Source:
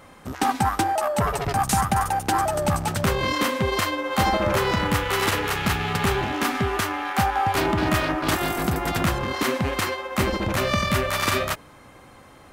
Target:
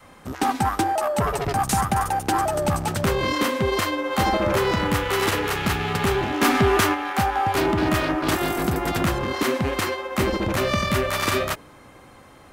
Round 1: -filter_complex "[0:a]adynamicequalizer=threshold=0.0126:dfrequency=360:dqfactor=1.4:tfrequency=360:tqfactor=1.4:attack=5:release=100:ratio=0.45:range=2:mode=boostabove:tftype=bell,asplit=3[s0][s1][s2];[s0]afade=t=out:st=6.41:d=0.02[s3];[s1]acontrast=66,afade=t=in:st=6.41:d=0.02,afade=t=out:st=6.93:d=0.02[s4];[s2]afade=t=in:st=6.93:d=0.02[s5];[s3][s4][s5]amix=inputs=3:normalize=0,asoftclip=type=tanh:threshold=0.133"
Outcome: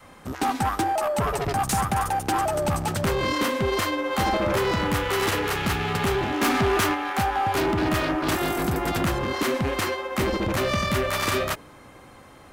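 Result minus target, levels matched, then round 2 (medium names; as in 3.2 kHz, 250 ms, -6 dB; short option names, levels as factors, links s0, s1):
saturation: distortion +9 dB
-filter_complex "[0:a]adynamicequalizer=threshold=0.0126:dfrequency=360:dqfactor=1.4:tfrequency=360:tqfactor=1.4:attack=5:release=100:ratio=0.45:range=2:mode=boostabove:tftype=bell,asplit=3[s0][s1][s2];[s0]afade=t=out:st=6.41:d=0.02[s3];[s1]acontrast=66,afade=t=in:st=6.41:d=0.02,afade=t=out:st=6.93:d=0.02[s4];[s2]afade=t=in:st=6.93:d=0.02[s5];[s3][s4][s5]amix=inputs=3:normalize=0,asoftclip=type=tanh:threshold=0.316"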